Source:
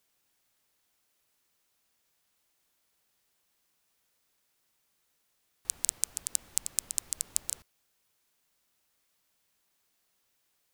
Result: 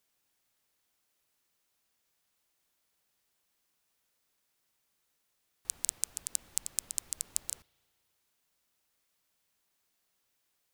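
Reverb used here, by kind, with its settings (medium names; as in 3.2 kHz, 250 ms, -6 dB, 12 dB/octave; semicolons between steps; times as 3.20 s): spring tank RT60 2.3 s, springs 35 ms, chirp 25 ms, DRR 19.5 dB; trim -3 dB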